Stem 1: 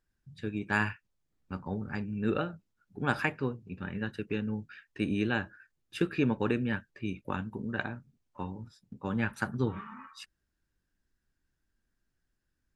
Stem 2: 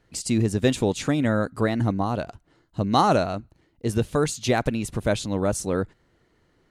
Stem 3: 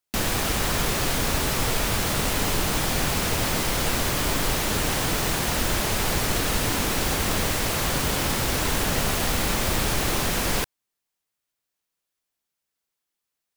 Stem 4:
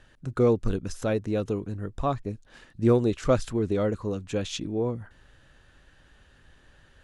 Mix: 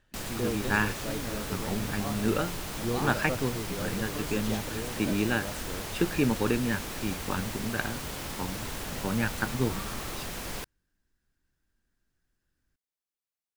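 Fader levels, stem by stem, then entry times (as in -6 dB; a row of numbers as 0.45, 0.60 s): +2.0, -17.0, -12.5, -12.0 dB; 0.00, 0.00, 0.00, 0.00 s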